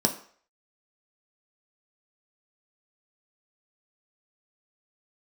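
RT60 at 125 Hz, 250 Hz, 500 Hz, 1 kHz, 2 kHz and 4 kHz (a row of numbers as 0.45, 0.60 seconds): 0.35, 0.40, 0.50, 0.50, 0.50, 0.50 seconds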